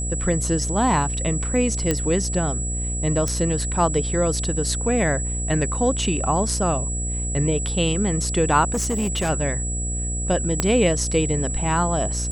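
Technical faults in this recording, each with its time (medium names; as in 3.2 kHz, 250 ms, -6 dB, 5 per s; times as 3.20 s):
buzz 60 Hz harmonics 12 -27 dBFS
whine 7.8 kHz -28 dBFS
1.91 s: pop -7 dBFS
3.28 s: pop
8.72–9.30 s: clipped -19 dBFS
10.60 s: pop -5 dBFS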